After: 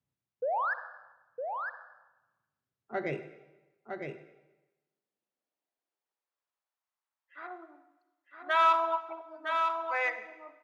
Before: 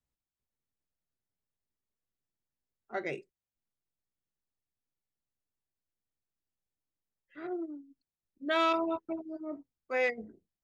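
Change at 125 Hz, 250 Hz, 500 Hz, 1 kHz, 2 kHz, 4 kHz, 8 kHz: +8.0 dB, -9.0 dB, -0.5 dB, +8.0 dB, +4.0 dB, -1.0 dB, n/a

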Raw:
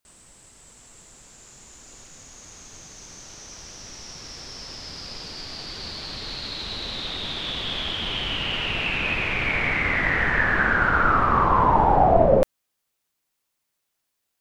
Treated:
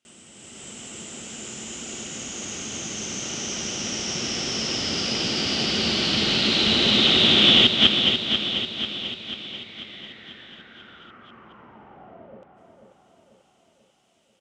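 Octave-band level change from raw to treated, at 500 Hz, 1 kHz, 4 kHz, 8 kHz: -6.5, -13.5, +11.0, +11.0 dB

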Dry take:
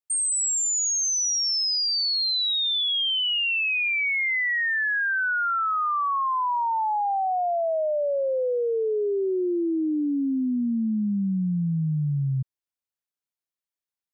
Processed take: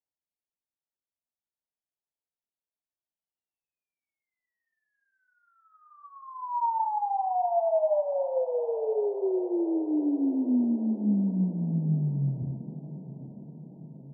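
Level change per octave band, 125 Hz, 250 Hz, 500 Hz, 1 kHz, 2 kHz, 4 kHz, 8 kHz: -2.5 dB, -1.5 dB, -2.5 dB, -5.5 dB, under -40 dB, under -40 dB, under -40 dB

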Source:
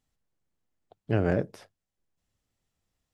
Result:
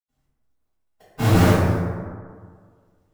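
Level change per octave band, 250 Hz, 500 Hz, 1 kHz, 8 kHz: +11.0 dB, +6.5 dB, +15.0 dB, n/a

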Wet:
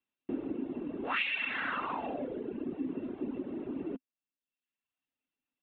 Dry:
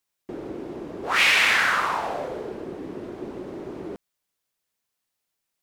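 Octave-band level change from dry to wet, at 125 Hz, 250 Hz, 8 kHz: -7.5 dB, 0.0 dB, under -40 dB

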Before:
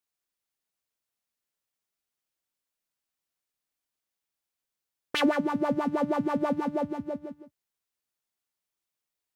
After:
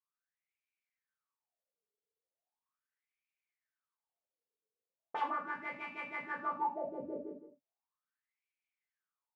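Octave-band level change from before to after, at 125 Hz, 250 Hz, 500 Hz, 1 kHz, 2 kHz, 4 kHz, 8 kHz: under -20 dB, -20.5 dB, -14.0 dB, -4.0 dB, -5.0 dB, -20.0 dB, under -25 dB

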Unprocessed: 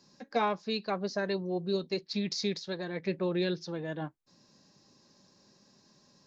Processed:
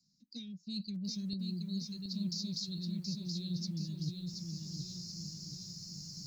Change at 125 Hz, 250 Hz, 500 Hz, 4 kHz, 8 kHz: +1.5 dB, -2.5 dB, -26.5 dB, -1.5 dB, n/a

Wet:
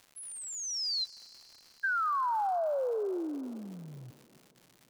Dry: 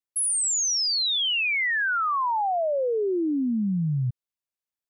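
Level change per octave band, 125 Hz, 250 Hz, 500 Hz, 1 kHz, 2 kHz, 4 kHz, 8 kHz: -21.0, -13.5, -6.5, -5.5, -11.5, -12.0, -14.5 dB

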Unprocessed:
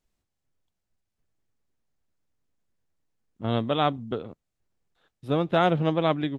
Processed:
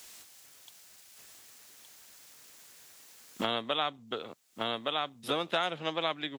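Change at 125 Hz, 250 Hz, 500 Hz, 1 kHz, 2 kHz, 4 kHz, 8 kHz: -19.0 dB, -12.0 dB, -8.0 dB, -6.0 dB, -1.5 dB, +3.5 dB, n/a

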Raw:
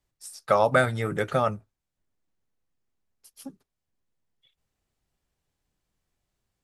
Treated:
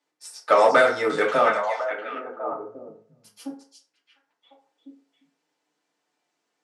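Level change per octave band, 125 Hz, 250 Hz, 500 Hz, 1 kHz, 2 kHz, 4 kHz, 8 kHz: -15.5, +1.0, +5.5, +6.0, +6.0, +6.0, +1.5 dB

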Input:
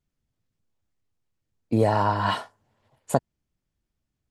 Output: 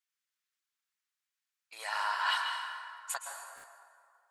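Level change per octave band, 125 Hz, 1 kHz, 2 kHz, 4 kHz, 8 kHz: under -40 dB, -8.0 dB, +1.0 dB, +1.5 dB, +1.5 dB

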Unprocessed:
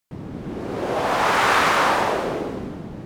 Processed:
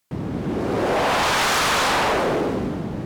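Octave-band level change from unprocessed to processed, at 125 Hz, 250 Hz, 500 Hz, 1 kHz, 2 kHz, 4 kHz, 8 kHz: +4.5, +4.0, +1.5, -1.0, -0.5, +4.0, +6.0 dB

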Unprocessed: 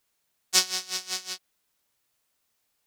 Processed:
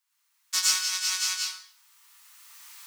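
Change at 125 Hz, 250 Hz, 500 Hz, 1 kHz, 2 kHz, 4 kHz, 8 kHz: n/a, under -15 dB, under -15 dB, 0.0 dB, +2.5 dB, +1.5 dB, +3.0 dB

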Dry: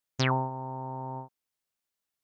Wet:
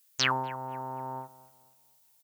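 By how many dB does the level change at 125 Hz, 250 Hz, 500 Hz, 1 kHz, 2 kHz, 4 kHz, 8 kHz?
-9.5 dB, -6.5 dB, -3.5 dB, +0.5 dB, +4.0 dB, +6.0 dB, n/a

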